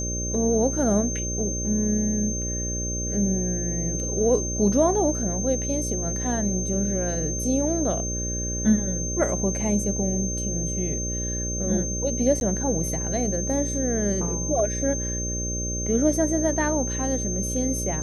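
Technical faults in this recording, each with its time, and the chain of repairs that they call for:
mains buzz 60 Hz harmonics 10 −30 dBFS
whistle 6,300 Hz −29 dBFS
0:12.40–0:12.41: drop-out 11 ms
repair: hum removal 60 Hz, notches 10
notch filter 6,300 Hz, Q 30
repair the gap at 0:12.40, 11 ms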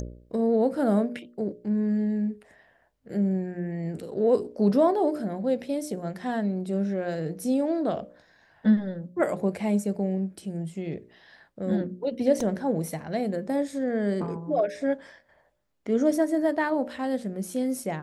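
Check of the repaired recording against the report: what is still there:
none of them is left

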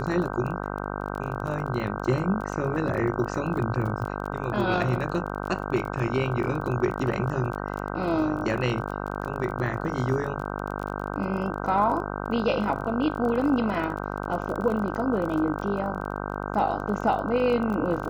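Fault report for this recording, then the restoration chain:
mains buzz 50 Hz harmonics 31 −32 dBFS
surface crackle 26 per second −32 dBFS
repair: click removal
hum removal 50 Hz, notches 31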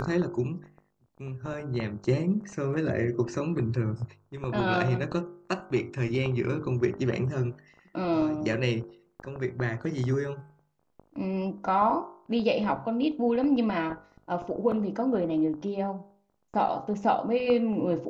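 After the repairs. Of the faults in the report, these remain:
none of them is left

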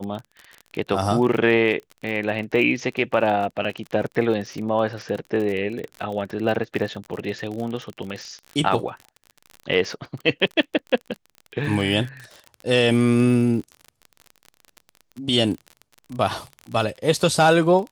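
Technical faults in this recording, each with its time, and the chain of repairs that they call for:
surface crackle 32 per second −29 dBFS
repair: click removal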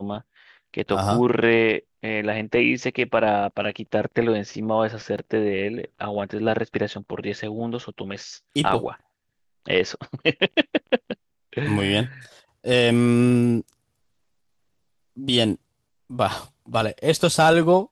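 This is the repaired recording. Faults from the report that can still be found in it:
none of them is left

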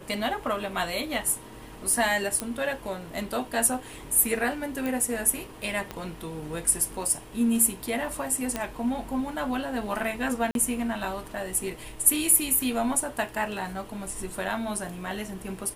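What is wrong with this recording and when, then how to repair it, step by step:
0:02.40: click −12 dBFS
0:04.86: click
0:05.91: click −18 dBFS
0:08.56: click −13 dBFS
0:10.51–0:10.55: drop-out 42 ms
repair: click removal
repair the gap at 0:10.51, 42 ms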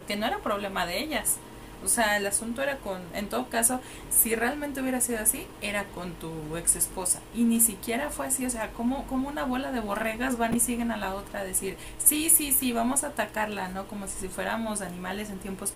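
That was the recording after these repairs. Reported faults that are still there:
0:05.91: click

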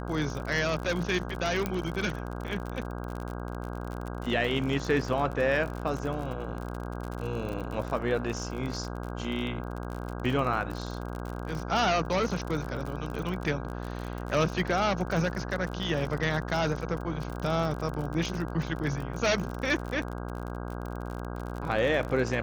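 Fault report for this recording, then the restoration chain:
mains buzz 60 Hz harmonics 27 −36 dBFS
surface crackle 45 per second −33 dBFS
0:01.66: click −15 dBFS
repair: click removal
hum removal 60 Hz, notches 27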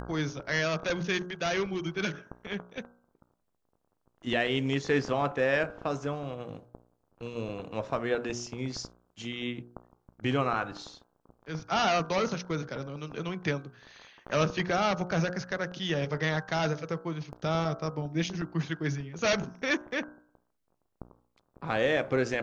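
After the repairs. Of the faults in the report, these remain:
none of them is left

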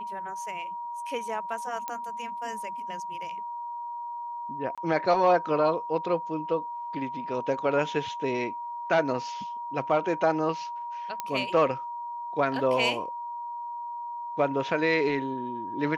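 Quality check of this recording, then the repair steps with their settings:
whistle 950 Hz −33 dBFS
0:01.88: click −18 dBFS
0:04.75–0:04.78: drop-out 26 ms
0:11.20: click −15 dBFS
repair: click removal
notch filter 950 Hz, Q 30
repair the gap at 0:04.75, 26 ms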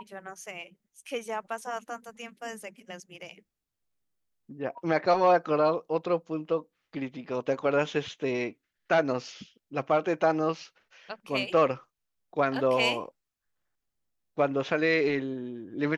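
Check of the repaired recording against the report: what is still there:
none of them is left

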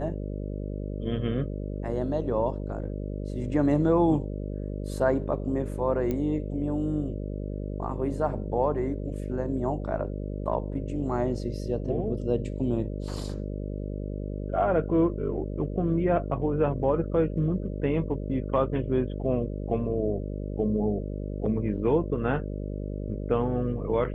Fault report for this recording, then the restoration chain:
mains buzz 50 Hz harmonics 12 −33 dBFS
0:06.11: click −18 dBFS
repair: click removal
hum removal 50 Hz, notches 12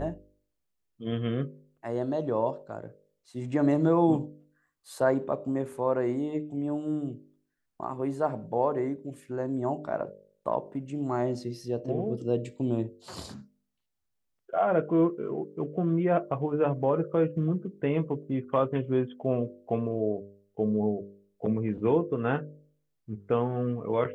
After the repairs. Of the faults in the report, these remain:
none of them is left

